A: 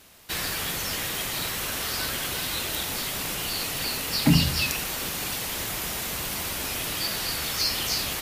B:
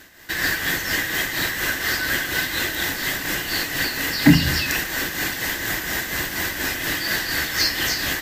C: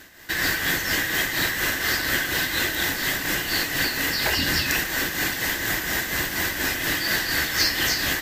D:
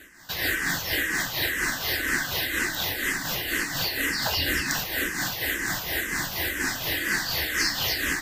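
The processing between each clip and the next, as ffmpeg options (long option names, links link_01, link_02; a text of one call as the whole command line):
ffmpeg -i in.wav -af "tremolo=f=4.2:d=0.5,acontrast=66,superequalizer=6b=2:11b=3.55:16b=0.447,volume=-1dB" out.wav
ffmpeg -i in.wav -af "afftfilt=real='re*lt(hypot(re,im),0.501)':imag='im*lt(hypot(re,im),0.501)':win_size=1024:overlap=0.75" out.wav
ffmpeg -i in.wav -filter_complex "[0:a]asplit=2[link_01][link_02];[link_02]afreqshift=-2[link_03];[link_01][link_03]amix=inputs=2:normalize=1" out.wav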